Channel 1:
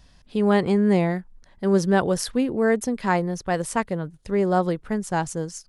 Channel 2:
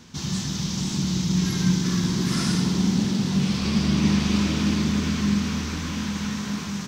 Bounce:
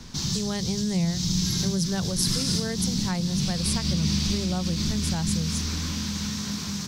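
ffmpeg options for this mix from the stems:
-filter_complex "[0:a]lowshelf=f=190:t=q:w=1.5:g=7.5,bandreject=f=50:t=h:w=6,bandreject=f=100:t=h:w=6,bandreject=f=150:t=h:w=6,bandreject=f=200:t=h:w=6,bandreject=f=250:t=h:w=6,volume=1.12,asplit=2[s0][s1];[1:a]volume=1.33[s2];[s1]apad=whole_len=303191[s3];[s2][s3]sidechaincompress=threshold=0.0708:ratio=8:attack=40:release=126[s4];[s0][s4]amix=inputs=2:normalize=0,acrossover=split=140|3000[s5][s6][s7];[s6]acompressor=threshold=0.0158:ratio=3[s8];[s5][s8][s7]amix=inputs=3:normalize=0,highshelf=f=6700:g=-11,aexciter=amount=2.7:drive=4.4:freq=4000"

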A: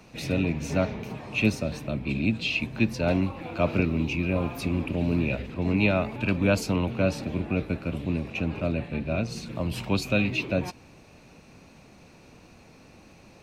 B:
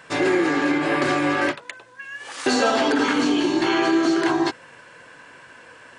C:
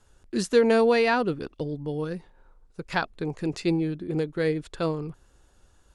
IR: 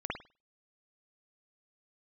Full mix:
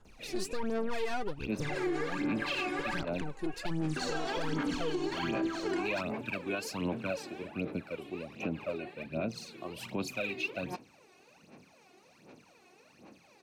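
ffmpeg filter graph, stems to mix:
-filter_complex "[0:a]highpass=230,adelay=50,volume=0.355[s0];[1:a]adelay=1500,volume=0.15[s1];[2:a]alimiter=limit=0.158:level=0:latency=1,aeval=exprs='(tanh(17.8*val(0)+0.75)-tanh(0.75))/17.8':c=same,volume=0.531,asplit=2[s2][s3];[s3]apad=whole_len=594415[s4];[s0][s4]sidechaincompress=threshold=0.00224:ratio=4:attack=24:release=148[s5];[s5][s1][s2]amix=inputs=3:normalize=0,aphaser=in_gain=1:out_gain=1:delay=2.8:decay=0.73:speed=1.3:type=sinusoidal,alimiter=limit=0.0631:level=0:latency=1:release=75"

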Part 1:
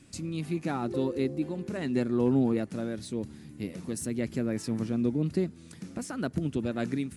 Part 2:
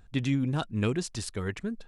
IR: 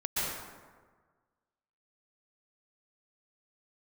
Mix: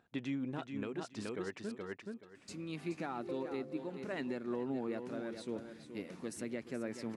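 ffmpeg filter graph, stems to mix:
-filter_complex "[0:a]highpass=f=740:p=1,adelay=2350,volume=1.12,asplit=2[s0][s1];[s1]volume=0.299[s2];[1:a]highpass=270,volume=0.708,asplit=2[s3][s4];[s4]volume=0.596[s5];[s2][s5]amix=inputs=2:normalize=0,aecho=0:1:425|850|1275:1|0.19|0.0361[s6];[s0][s3][s6]amix=inputs=3:normalize=0,lowpass=f=1900:p=1,alimiter=level_in=1.68:limit=0.0631:level=0:latency=1:release=379,volume=0.596"

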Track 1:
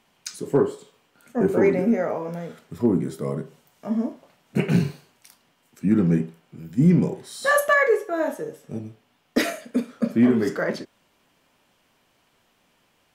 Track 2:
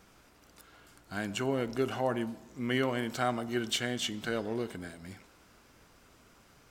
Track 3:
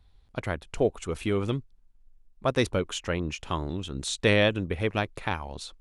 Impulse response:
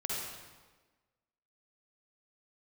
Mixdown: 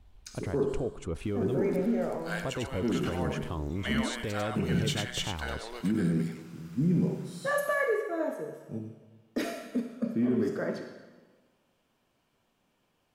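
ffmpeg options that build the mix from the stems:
-filter_complex "[0:a]bandreject=f=2000:w=20,volume=0.266,asplit=2[s0][s1];[s1]volume=0.398[s2];[1:a]highpass=850,adelay=1150,volume=1.41,asplit=2[s3][s4];[s4]volume=0.355[s5];[2:a]acompressor=threshold=0.0398:ratio=3,volume=0.75,asplit=2[s6][s7];[s7]apad=whole_len=346294[s8];[s3][s8]sidechaincompress=threshold=0.0158:ratio=4:attack=48:release=542[s9];[s0][s6]amix=inputs=2:normalize=0,tiltshelf=f=840:g=5,alimiter=limit=0.0668:level=0:latency=1:release=22,volume=1[s10];[3:a]atrim=start_sample=2205[s11];[s2][s11]afir=irnorm=-1:irlink=0[s12];[s5]aecho=0:1:97:1[s13];[s9][s10][s12][s13]amix=inputs=4:normalize=0"

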